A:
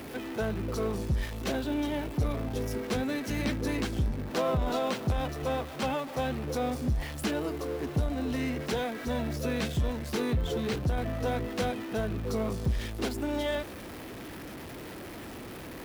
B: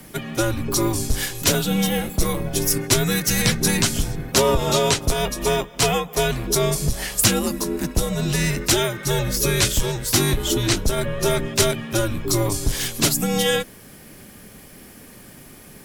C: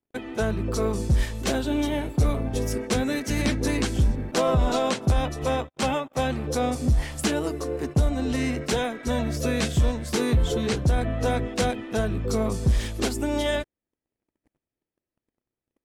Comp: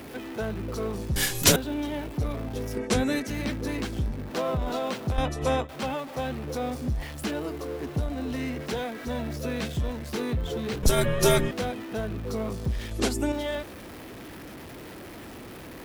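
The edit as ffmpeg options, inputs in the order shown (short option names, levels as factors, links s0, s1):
-filter_complex "[1:a]asplit=2[s0][s1];[2:a]asplit=3[s2][s3][s4];[0:a]asplit=6[s5][s6][s7][s8][s9][s10];[s5]atrim=end=1.162[s11];[s0]atrim=start=1.158:end=1.562[s12];[s6]atrim=start=1.558:end=2.772[s13];[s2]atrim=start=2.768:end=3.272[s14];[s7]atrim=start=3.268:end=5.182[s15];[s3]atrim=start=5.178:end=5.692[s16];[s8]atrim=start=5.688:end=10.832[s17];[s1]atrim=start=10.828:end=11.512[s18];[s9]atrim=start=11.508:end=12.912[s19];[s4]atrim=start=12.908:end=13.322[s20];[s10]atrim=start=13.318[s21];[s11][s12]acrossfade=d=0.004:c1=hsin:c2=hsin[s22];[s22][s13]acrossfade=d=0.004:c1=hsin:c2=hsin[s23];[s23][s14]acrossfade=d=0.004:c1=hsin:c2=hsin[s24];[s24][s15]acrossfade=d=0.004:c1=hsin:c2=hsin[s25];[s25][s16]acrossfade=d=0.004:c1=hsin:c2=hsin[s26];[s26][s17]acrossfade=d=0.004:c1=hsin:c2=hsin[s27];[s27][s18]acrossfade=d=0.004:c1=hsin:c2=hsin[s28];[s28][s19]acrossfade=d=0.004:c1=hsin:c2=hsin[s29];[s29][s20]acrossfade=d=0.004:c1=hsin:c2=hsin[s30];[s30][s21]acrossfade=d=0.004:c1=hsin:c2=hsin"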